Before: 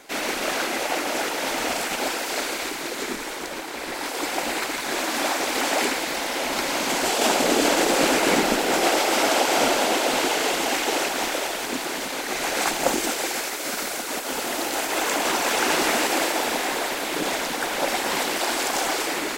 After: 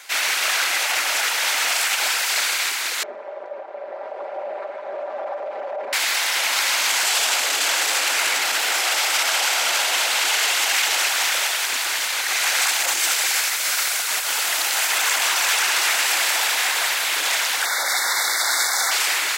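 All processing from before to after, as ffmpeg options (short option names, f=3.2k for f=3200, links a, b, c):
-filter_complex "[0:a]asettb=1/sr,asplit=3[a][b][c];[a]atrim=end=3.034[d];[b]atrim=start=3.03:end=5.93,asetpts=PTS-STARTPTS,afade=t=in:d=0.004:c=qsin,afade=t=out:st=2.896:d=0.004:c=qsin,tremolo=f=180:d=0.462,lowpass=f=590:t=q:w=7.1,aecho=1:1:5.1:0.54,atrim=end_sample=127890[e];[c]atrim=start=5.926[f];[d][e]acrossfade=d=0.004:c1=hsin:c2=qsin[g];[g][f]acrossfade=d=0.004:c1=qsin:c2=hsin,asettb=1/sr,asplit=3[h][i][j];[h]atrim=end=17.654[k];[i]atrim=start=17.65:end=18.91,asetpts=PTS-STARTPTS,afade=t=in:d=0.004:c=qsin,afade=t=out:st=1.256:d=0.004:c=qsin,asuperstop=centerf=2800:order=20:qfactor=2.3,equalizer=f=1.4k:w=6.7:g=3.5[l];[j]atrim=start=18.906[m];[k][l]acrossfade=d=0.004:c1=hsin:c2=qsin[n];[n][m]acrossfade=d=0.004:c1=qsin:c2=hsin,alimiter=limit=-16dB:level=0:latency=1:release=18,highpass=1.4k,acontrast=39,volume=3dB"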